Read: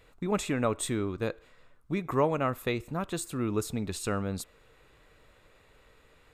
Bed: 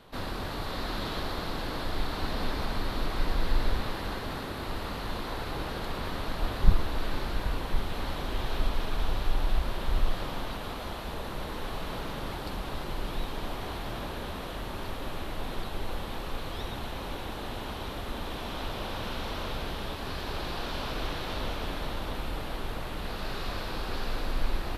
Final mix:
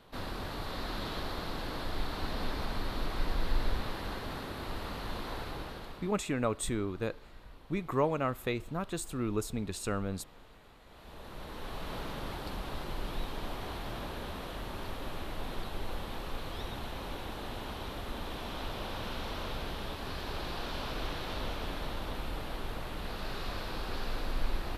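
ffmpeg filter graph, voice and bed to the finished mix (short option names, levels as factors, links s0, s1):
-filter_complex "[0:a]adelay=5800,volume=0.708[s0];[1:a]volume=5.31,afade=t=out:st=5.36:d=0.82:silence=0.125893,afade=t=in:st=10.86:d=1.11:silence=0.11885[s1];[s0][s1]amix=inputs=2:normalize=0"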